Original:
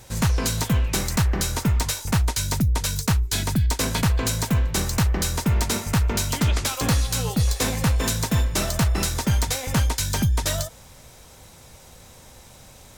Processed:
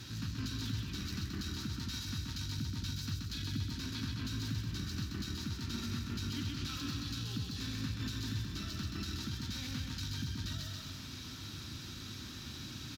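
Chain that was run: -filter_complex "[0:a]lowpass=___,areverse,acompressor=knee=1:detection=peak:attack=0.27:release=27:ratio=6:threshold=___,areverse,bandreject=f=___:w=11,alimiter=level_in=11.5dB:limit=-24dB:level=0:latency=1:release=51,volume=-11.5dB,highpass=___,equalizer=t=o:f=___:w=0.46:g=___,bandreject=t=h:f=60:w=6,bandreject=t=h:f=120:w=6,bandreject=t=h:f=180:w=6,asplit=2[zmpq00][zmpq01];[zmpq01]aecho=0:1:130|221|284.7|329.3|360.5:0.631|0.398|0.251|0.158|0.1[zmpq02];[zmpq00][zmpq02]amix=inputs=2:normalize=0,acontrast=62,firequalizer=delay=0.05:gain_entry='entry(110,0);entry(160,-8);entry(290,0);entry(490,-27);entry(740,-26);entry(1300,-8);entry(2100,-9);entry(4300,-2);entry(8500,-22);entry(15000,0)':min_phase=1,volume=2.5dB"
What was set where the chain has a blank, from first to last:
8.9k, -29dB, 2.1k, 120, 660, 2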